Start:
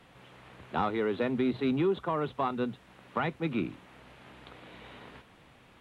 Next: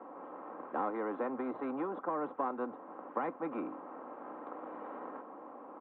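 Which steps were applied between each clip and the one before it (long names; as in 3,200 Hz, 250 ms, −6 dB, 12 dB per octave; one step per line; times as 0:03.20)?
Chebyshev band-pass filter 290–1,100 Hz, order 3
comb filter 3.8 ms, depth 50%
every bin compressed towards the loudest bin 2 to 1
level −2.5 dB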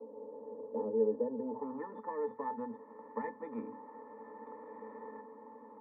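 low-pass filter sweep 530 Hz → 2,300 Hz, 0:01.41–0:01.92
mains-hum notches 50/100/150/200/250 Hz
resonances in every octave A, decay 0.13 s
level +9 dB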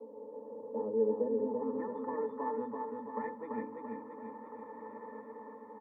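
repeating echo 337 ms, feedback 54%, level −3.5 dB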